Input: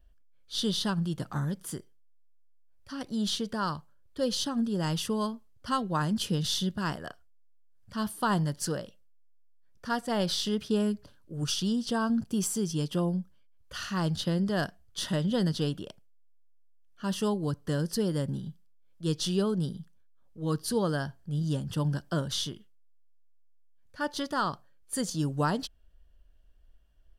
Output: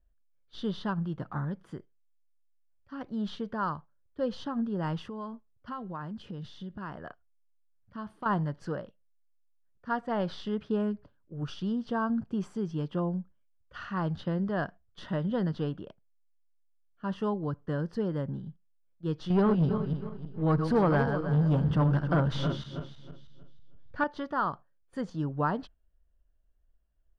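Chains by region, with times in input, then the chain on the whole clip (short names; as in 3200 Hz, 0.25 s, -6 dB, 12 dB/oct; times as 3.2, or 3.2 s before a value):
5.06–8.26 compressor 5:1, threshold -34 dBFS + hard clip -29 dBFS
19.3–24.04 regenerating reverse delay 0.159 s, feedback 55%, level -8 dB + low shelf 150 Hz +5 dB + sample leveller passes 2
whole clip: gate -44 dBFS, range -7 dB; LPF 1900 Hz 12 dB/oct; dynamic EQ 1100 Hz, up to +4 dB, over -46 dBFS, Q 0.92; gain -2.5 dB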